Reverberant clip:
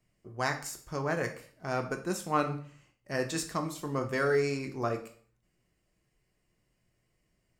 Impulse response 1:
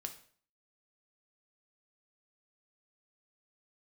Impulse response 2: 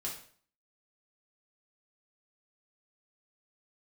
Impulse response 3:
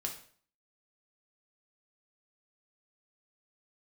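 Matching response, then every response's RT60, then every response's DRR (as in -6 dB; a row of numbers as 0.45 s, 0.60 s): 1; 0.50 s, 0.50 s, 0.50 s; 5.0 dB, -4.0 dB, 1.0 dB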